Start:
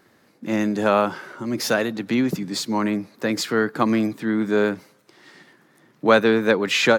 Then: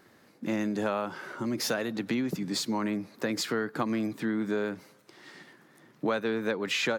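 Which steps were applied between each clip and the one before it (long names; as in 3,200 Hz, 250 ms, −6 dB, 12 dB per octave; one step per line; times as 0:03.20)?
downward compressor 4 to 1, threshold −26 dBFS, peak gain reduction 13.5 dB
level −1.5 dB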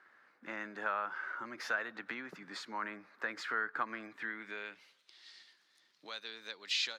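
band-pass filter sweep 1,500 Hz → 4,300 Hz, 0:04.02–0:05.28
level +2.5 dB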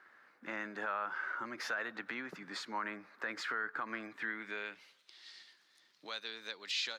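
brickwall limiter −28.5 dBFS, peak gain reduction 8 dB
level +2 dB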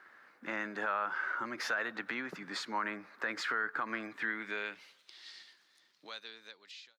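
fade-out on the ending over 1.79 s
level +3.5 dB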